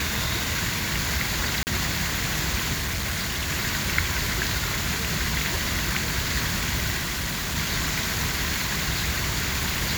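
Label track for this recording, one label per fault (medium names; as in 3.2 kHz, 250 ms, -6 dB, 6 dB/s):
1.630000	1.670000	dropout 39 ms
2.730000	3.510000	clipped -24 dBFS
6.970000	7.580000	clipped -24.5 dBFS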